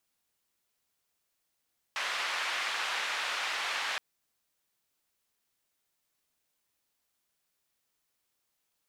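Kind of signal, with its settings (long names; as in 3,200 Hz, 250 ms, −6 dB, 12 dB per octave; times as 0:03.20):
band-limited noise 970–2,600 Hz, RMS −33.5 dBFS 2.02 s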